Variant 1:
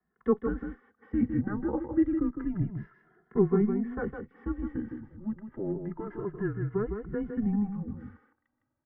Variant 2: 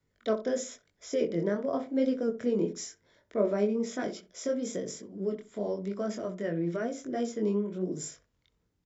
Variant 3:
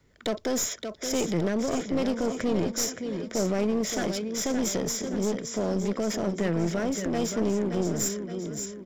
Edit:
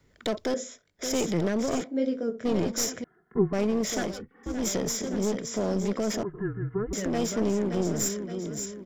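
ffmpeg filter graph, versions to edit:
-filter_complex "[1:a]asplit=2[s0][s1];[0:a]asplit=3[s2][s3][s4];[2:a]asplit=6[s5][s6][s7][s8][s9][s10];[s5]atrim=end=0.542[s11];[s0]atrim=start=0.538:end=0.992[s12];[s6]atrim=start=0.988:end=1.842[s13];[s1]atrim=start=1.838:end=2.452[s14];[s7]atrim=start=2.448:end=3.042[s15];[s2]atrim=start=3.038:end=3.532[s16];[s8]atrim=start=3.528:end=4.24[s17];[s3]atrim=start=4:end=4.67[s18];[s9]atrim=start=4.43:end=6.232[s19];[s4]atrim=start=6.228:end=6.932[s20];[s10]atrim=start=6.928[s21];[s11][s12]acrossfade=d=0.004:c1=hsin:c2=hsin[s22];[s22][s13]acrossfade=d=0.004:c1=hsin:c2=hsin[s23];[s23][s14]acrossfade=d=0.004:c1=hsin:c2=hsin[s24];[s24][s15]acrossfade=d=0.004:c1=hsin:c2=hsin[s25];[s25][s16]acrossfade=d=0.004:c1=hsin:c2=hsin[s26];[s26][s17]acrossfade=d=0.004:c1=hsin:c2=hsin[s27];[s27][s18]acrossfade=d=0.24:c1=tri:c2=tri[s28];[s28][s19]acrossfade=d=0.24:c1=tri:c2=tri[s29];[s29][s20]acrossfade=d=0.004:c1=hsin:c2=hsin[s30];[s30][s21]acrossfade=d=0.004:c1=hsin:c2=hsin"

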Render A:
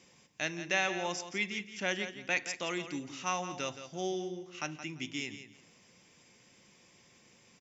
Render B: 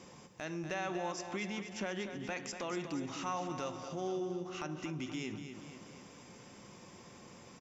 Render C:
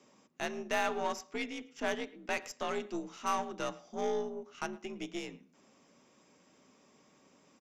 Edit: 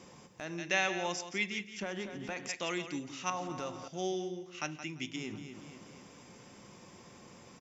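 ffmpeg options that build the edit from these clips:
-filter_complex "[0:a]asplit=3[s0][s1][s2];[1:a]asplit=4[s3][s4][s5][s6];[s3]atrim=end=0.582[s7];[s0]atrim=start=0.578:end=1.822[s8];[s4]atrim=start=1.818:end=2.492[s9];[s1]atrim=start=2.488:end=3.302[s10];[s5]atrim=start=3.298:end=3.882[s11];[s2]atrim=start=3.878:end=5.162[s12];[s6]atrim=start=5.158[s13];[s7][s8]acrossfade=d=0.004:c1=hsin:c2=hsin[s14];[s14][s9]acrossfade=d=0.004:c1=hsin:c2=hsin[s15];[s15][s10]acrossfade=d=0.004:c1=hsin:c2=hsin[s16];[s16][s11]acrossfade=d=0.004:c1=hsin:c2=hsin[s17];[s17][s12]acrossfade=d=0.004:c1=hsin:c2=hsin[s18];[s18][s13]acrossfade=d=0.004:c1=hsin:c2=hsin"

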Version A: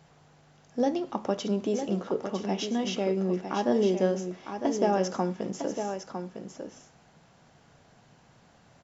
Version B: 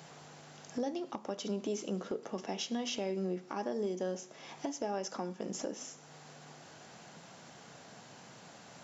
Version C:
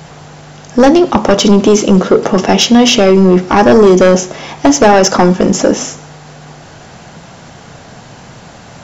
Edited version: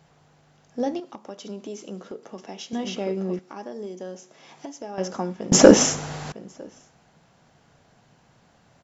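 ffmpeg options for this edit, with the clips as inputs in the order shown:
-filter_complex "[1:a]asplit=2[s0][s1];[0:a]asplit=4[s2][s3][s4][s5];[s2]atrim=end=1.002[s6];[s0]atrim=start=0.998:end=2.732[s7];[s3]atrim=start=2.728:end=3.392[s8];[s1]atrim=start=3.388:end=4.982[s9];[s4]atrim=start=4.978:end=5.522[s10];[2:a]atrim=start=5.518:end=6.322[s11];[s5]atrim=start=6.318[s12];[s6][s7]acrossfade=d=0.004:c1=hsin:c2=hsin[s13];[s13][s8]acrossfade=d=0.004:c1=hsin:c2=hsin[s14];[s14][s9]acrossfade=d=0.004:c1=hsin:c2=hsin[s15];[s15][s10]acrossfade=d=0.004:c1=hsin:c2=hsin[s16];[s16][s11]acrossfade=d=0.004:c1=hsin:c2=hsin[s17];[s17][s12]acrossfade=d=0.004:c1=hsin:c2=hsin"

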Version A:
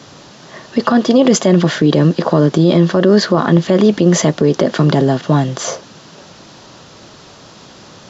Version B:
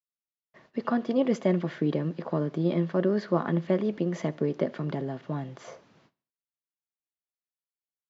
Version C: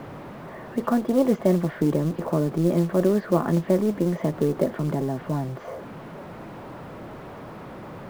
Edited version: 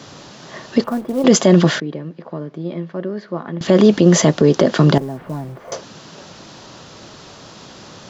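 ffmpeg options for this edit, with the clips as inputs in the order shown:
-filter_complex "[2:a]asplit=2[s0][s1];[0:a]asplit=4[s2][s3][s4][s5];[s2]atrim=end=0.842[s6];[s0]atrim=start=0.838:end=1.242[s7];[s3]atrim=start=1.238:end=1.802[s8];[1:a]atrim=start=1.798:end=3.612[s9];[s4]atrim=start=3.608:end=4.982[s10];[s1]atrim=start=4.978:end=5.722[s11];[s5]atrim=start=5.718[s12];[s6][s7]acrossfade=d=0.004:c1=hsin:c2=hsin[s13];[s13][s8]acrossfade=d=0.004:c1=hsin:c2=hsin[s14];[s14][s9]acrossfade=d=0.004:c1=hsin:c2=hsin[s15];[s15][s10]acrossfade=d=0.004:c1=hsin:c2=hsin[s16];[s16][s11]acrossfade=d=0.004:c1=hsin:c2=hsin[s17];[s17][s12]acrossfade=d=0.004:c1=hsin:c2=hsin"

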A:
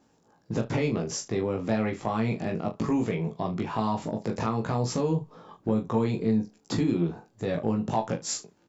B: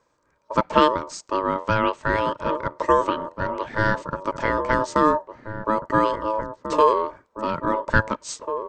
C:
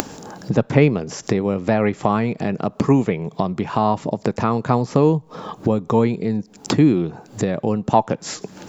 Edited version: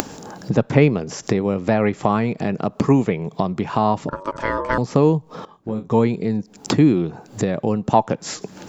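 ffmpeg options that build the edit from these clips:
-filter_complex "[2:a]asplit=3[s0][s1][s2];[s0]atrim=end=4.092[s3];[1:a]atrim=start=4.088:end=4.782[s4];[s1]atrim=start=4.778:end=5.452[s5];[0:a]atrim=start=5.448:end=5.912[s6];[s2]atrim=start=5.908[s7];[s3][s4]acrossfade=d=0.004:c1=hsin:c2=hsin[s8];[s8][s5]acrossfade=d=0.004:c1=hsin:c2=hsin[s9];[s9][s6]acrossfade=d=0.004:c1=hsin:c2=hsin[s10];[s10][s7]acrossfade=d=0.004:c1=hsin:c2=hsin"

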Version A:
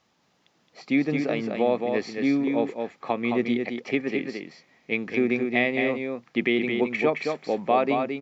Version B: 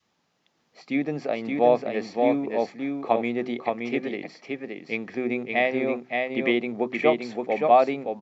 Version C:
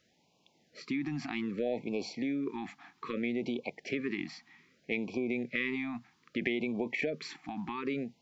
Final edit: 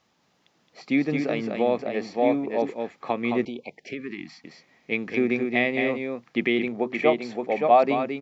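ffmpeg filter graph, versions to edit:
-filter_complex "[1:a]asplit=2[s0][s1];[0:a]asplit=4[s2][s3][s4][s5];[s2]atrim=end=1.792[s6];[s0]atrim=start=1.788:end=2.622[s7];[s3]atrim=start=2.618:end=3.452[s8];[2:a]atrim=start=3.448:end=4.442[s9];[s4]atrim=start=4.438:end=6.682[s10];[s1]atrim=start=6.678:end=7.832[s11];[s5]atrim=start=7.828[s12];[s6][s7]acrossfade=d=0.004:c1=hsin:c2=hsin[s13];[s13][s8]acrossfade=d=0.004:c1=hsin:c2=hsin[s14];[s14][s9]acrossfade=d=0.004:c1=hsin:c2=hsin[s15];[s15][s10]acrossfade=d=0.004:c1=hsin:c2=hsin[s16];[s16][s11]acrossfade=d=0.004:c1=hsin:c2=hsin[s17];[s17][s12]acrossfade=d=0.004:c1=hsin:c2=hsin"

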